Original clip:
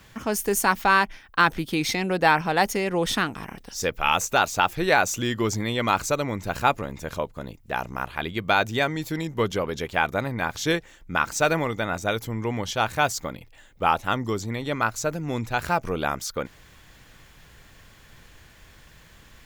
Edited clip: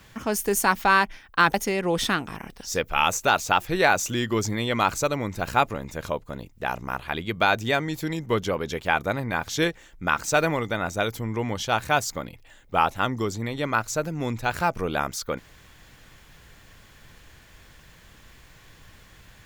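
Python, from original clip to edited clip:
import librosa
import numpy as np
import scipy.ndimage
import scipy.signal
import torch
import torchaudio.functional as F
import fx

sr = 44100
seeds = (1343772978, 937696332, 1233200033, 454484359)

y = fx.edit(x, sr, fx.cut(start_s=1.54, length_s=1.08), tone=tone)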